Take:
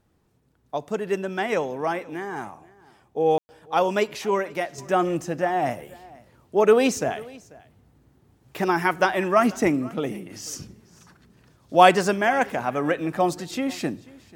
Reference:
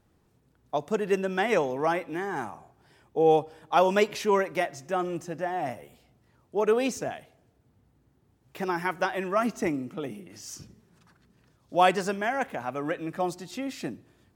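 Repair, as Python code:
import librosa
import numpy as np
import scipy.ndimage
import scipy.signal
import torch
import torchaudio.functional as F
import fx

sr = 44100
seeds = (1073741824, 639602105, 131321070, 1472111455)

y = fx.fix_ambience(x, sr, seeds[0], print_start_s=0.01, print_end_s=0.51, start_s=3.38, end_s=3.49)
y = fx.fix_echo_inverse(y, sr, delay_ms=490, level_db=-22.5)
y = fx.gain(y, sr, db=fx.steps((0.0, 0.0), (4.78, -7.0)))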